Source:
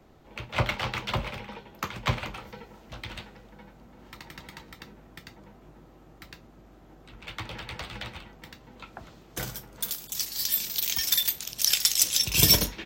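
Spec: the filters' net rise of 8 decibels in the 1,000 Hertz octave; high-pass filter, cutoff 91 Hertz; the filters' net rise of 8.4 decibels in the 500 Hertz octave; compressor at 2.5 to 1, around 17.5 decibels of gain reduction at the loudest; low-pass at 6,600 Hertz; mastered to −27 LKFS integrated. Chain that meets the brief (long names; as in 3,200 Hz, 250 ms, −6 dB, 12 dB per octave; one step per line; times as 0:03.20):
high-pass filter 91 Hz
low-pass filter 6,600 Hz
parametric band 500 Hz +8 dB
parametric band 1,000 Hz +7.5 dB
downward compressor 2.5 to 1, threshold −44 dBFS
level +16 dB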